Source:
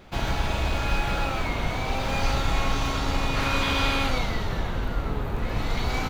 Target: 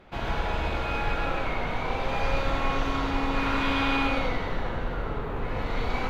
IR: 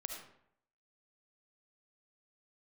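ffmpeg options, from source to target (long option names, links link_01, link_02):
-filter_complex "[0:a]bass=frequency=250:gain=-4,treble=frequency=4000:gain=-13[link_01];[1:a]atrim=start_sample=2205,asetrate=33957,aresample=44100[link_02];[link_01][link_02]afir=irnorm=-1:irlink=0"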